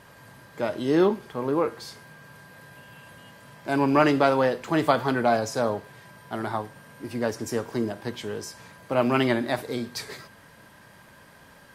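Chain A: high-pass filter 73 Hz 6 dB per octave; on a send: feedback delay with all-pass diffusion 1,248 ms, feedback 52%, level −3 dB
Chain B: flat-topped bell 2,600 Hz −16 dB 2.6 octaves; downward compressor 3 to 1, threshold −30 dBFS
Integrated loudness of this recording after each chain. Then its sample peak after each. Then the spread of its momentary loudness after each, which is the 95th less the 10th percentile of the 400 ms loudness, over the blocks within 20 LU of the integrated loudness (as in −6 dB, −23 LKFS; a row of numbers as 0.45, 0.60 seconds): −25.5, −34.0 LKFS; −5.5, −17.5 dBFS; 11, 21 LU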